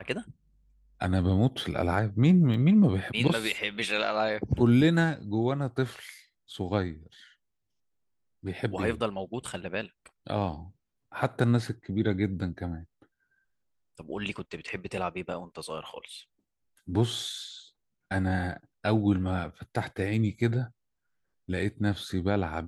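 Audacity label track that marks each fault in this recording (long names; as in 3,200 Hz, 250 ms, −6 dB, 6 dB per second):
2.540000	2.540000	drop-out 3.8 ms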